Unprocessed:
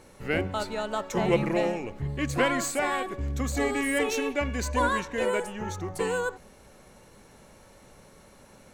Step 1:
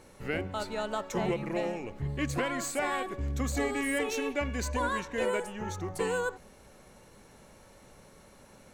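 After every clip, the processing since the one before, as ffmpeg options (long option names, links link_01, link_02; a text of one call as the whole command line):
ffmpeg -i in.wav -af "alimiter=limit=-17.5dB:level=0:latency=1:release=461,volume=-2dB" out.wav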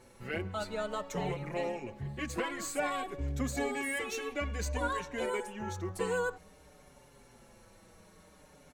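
ffmpeg -i in.wav -filter_complex "[0:a]asplit=2[link_01][link_02];[link_02]adelay=5.4,afreqshift=-0.54[link_03];[link_01][link_03]amix=inputs=2:normalize=1" out.wav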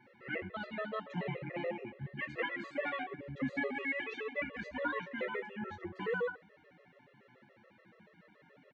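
ffmpeg -i in.wav -filter_complex "[0:a]highpass=frequency=130:width=0.5412,highpass=frequency=130:width=1.3066,equalizer=frequency=690:width_type=q:width=4:gain=-4,equalizer=frequency=1100:width_type=q:width=4:gain=-5,equalizer=frequency=1900:width_type=q:width=4:gain=8,lowpass=frequency=3200:width=0.5412,lowpass=frequency=3200:width=1.3066,asplit=2[link_01][link_02];[link_02]aecho=0:1:23|70:0.335|0.15[link_03];[link_01][link_03]amix=inputs=2:normalize=0,afftfilt=real='re*gt(sin(2*PI*7*pts/sr)*(1-2*mod(floor(b*sr/1024/350),2)),0)':imag='im*gt(sin(2*PI*7*pts/sr)*(1-2*mod(floor(b*sr/1024/350),2)),0)':win_size=1024:overlap=0.75" out.wav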